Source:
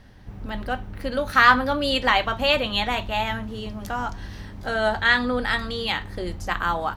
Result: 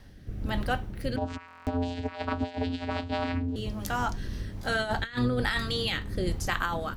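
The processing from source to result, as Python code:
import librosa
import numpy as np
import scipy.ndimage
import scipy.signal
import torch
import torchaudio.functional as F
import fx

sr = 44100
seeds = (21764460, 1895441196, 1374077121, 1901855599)

y = fx.octave_divider(x, sr, octaves=1, level_db=-1.0)
y = fx.high_shelf(y, sr, hz=5300.0, db=9.0)
y = fx.over_compress(y, sr, threshold_db=-23.0, ratio=-0.5)
y = fx.rotary(y, sr, hz=1.2)
y = fx.vocoder(y, sr, bands=8, carrier='square', carrier_hz=87.2, at=(1.16, 3.56))
y = fx.buffer_glitch(y, sr, at_s=(1.46,), block=1024, repeats=8)
y = F.gain(torch.from_numpy(y), -2.5).numpy()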